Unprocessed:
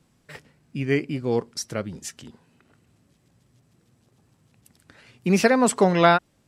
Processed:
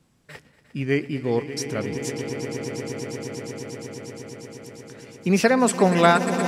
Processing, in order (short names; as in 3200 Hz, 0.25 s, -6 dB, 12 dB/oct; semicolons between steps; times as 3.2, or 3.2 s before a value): swelling echo 0.118 s, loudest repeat 8, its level -13 dB